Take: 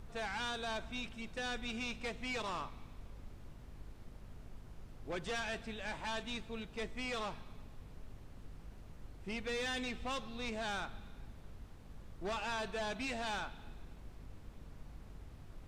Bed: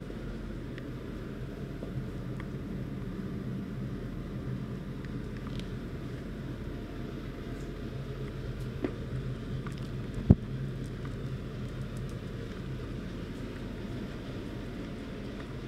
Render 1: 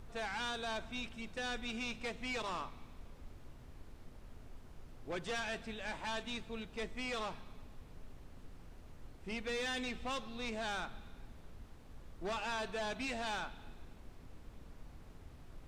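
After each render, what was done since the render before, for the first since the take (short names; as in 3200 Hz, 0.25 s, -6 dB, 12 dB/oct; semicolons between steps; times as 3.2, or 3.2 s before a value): notches 50/100/150/200 Hz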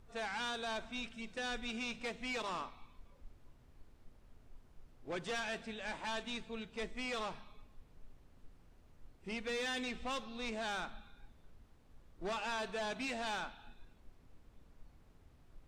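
noise print and reduce 9 dB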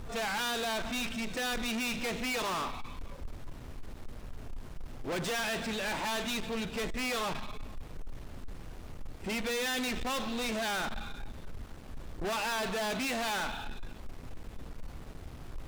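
sample leveller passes 5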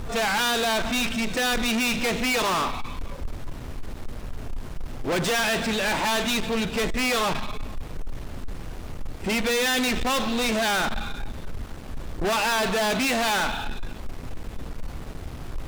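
gain +9.5 dB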